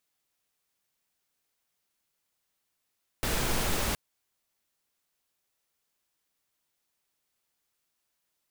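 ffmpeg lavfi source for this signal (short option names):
-f lavfi -i "anoisesrc=c=pink:a=0.193:d=0.72:r=44100:seed=1"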